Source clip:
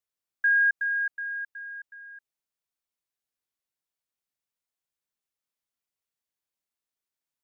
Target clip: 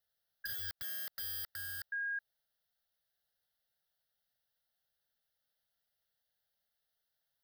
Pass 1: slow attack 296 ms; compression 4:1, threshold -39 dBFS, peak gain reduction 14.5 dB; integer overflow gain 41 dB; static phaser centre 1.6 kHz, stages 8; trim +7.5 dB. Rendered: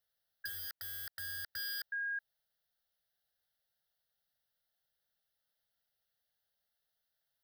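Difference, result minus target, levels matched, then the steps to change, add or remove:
compression: peak gain reduction +5.5 dB
change: compression 4:1, threshold -31.5 dBFS, peak gain reduction 9 dB

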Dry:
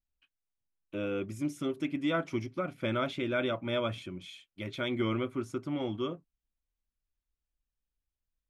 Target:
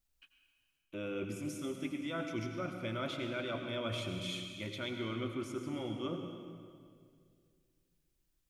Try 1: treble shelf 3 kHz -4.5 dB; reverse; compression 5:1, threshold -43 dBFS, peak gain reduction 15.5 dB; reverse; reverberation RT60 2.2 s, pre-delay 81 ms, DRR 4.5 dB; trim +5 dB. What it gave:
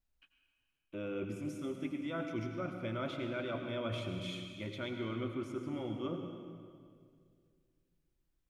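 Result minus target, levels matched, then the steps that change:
8 kHz band -7.5 dB
change: treble shelf 3 kHz +5.5 dB

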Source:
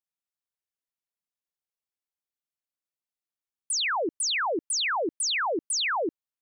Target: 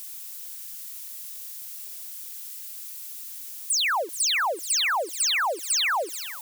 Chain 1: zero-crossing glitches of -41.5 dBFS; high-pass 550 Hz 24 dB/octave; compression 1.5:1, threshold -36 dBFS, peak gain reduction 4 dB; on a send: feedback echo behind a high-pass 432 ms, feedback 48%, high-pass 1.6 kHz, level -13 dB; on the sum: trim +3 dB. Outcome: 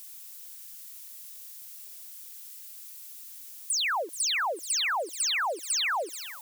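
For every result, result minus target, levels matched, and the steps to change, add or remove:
zero-crossing glitches: distortion -6 dB; compression: peak gain reduction +4 dB
change: zero-crossing glitches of -35 dBFS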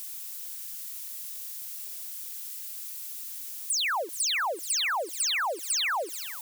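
compression: peak gain reduction +4 dB
remove: compression 1.5:1, threshold -36 dBFS, peak gain reduction 4 dB

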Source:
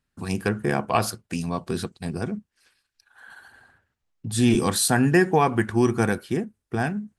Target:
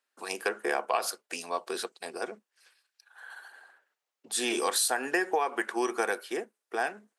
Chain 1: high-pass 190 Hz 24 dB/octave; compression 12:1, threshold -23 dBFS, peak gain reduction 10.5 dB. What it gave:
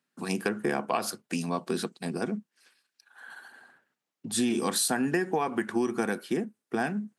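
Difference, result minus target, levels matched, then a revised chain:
250 Hz band +8.0 dB
high-pass 430 Hz 24 dB/octave; compression 12:1, threshold -23 dBFS, peak gain reduction 8.5 dB

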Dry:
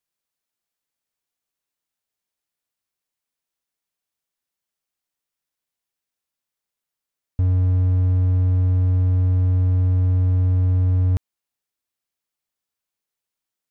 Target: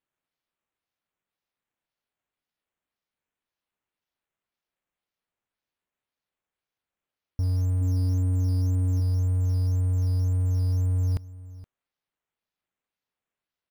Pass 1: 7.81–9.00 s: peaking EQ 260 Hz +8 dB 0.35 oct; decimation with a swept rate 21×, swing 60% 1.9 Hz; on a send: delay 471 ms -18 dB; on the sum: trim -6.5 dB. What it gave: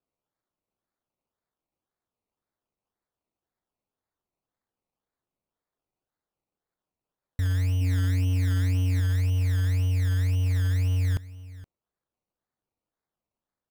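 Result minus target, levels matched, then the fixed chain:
decimation with a swept rate: distortion +10 dB
7.81–9.00 s: peaking EQ 260 Hz +8 dB 0.35 oct; decimation with a swept rate 7×, swing 60% 1.9 Hz; on a send: delay 471 ms -18 dB; on the sum: trim -6.5 dB

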